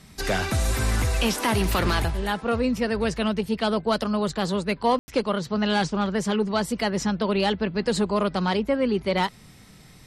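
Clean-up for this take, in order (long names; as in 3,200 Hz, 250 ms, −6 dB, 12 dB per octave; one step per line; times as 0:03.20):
ambience match 0:04.99–0:05.08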